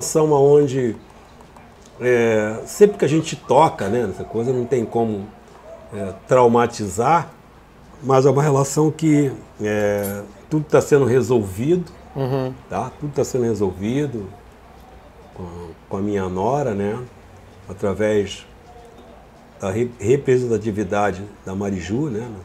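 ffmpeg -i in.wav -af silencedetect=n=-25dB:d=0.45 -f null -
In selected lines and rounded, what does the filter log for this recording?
silence_start: 0.95
silence_end: 2.01 | silence_duration: 1.06
silence_start: 5.25
silence_end: 5.93 | silence_duration: 0.68
silence_start: 7.23
silence_end: 8.04 | silence_duration: 0.81
silence_start: 14.26
silence_end: 15.40 | silence_duration: 1.14
silence_start: 17.04
silence_end: 17.70 | silence_duration: 0.66
silence_start: 18.35
silence_end: 19.63 | silence_duration: 1.27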